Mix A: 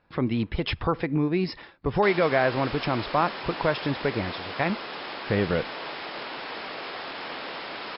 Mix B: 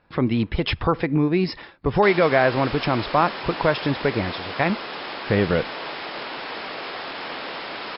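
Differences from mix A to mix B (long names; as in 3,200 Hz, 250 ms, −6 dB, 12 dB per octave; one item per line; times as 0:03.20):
speech +4.5 dB
background +3.5 dB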